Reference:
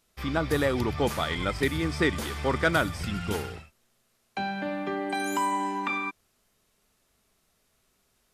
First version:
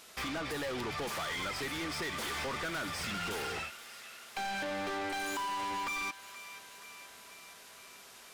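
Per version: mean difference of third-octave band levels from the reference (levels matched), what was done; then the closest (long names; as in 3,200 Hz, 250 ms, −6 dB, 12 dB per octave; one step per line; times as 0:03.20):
8.0 dB: downward compressor 6 to 1, threshold −37 dBFS, peak gain reduction 17.5 dB
mid-hump overdrive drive 31 dB, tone 7,000 Hz, clips at −24.5 dBFS
delay with a high-pass on its return 477 ms, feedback 67%, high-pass 1,400 Hz, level −12.5 dB
level −5.5 dB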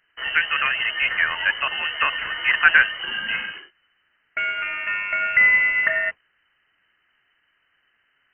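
17.5 dB: flat-topped bell 1,200 Hz +12.5 dB 1.2 octaves
noise that follows the level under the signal 15 dB
voice inversion scrambler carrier 3,000 Hz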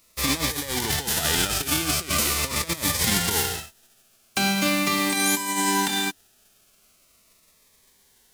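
11.0 dB: spectral envelope flattened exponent 0.3
compressor whose output falls as the input rises −30 dBFS, ratio −0.5
phaser whose notches keep moving one way falling 0.41 Hz
level +8 dB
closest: first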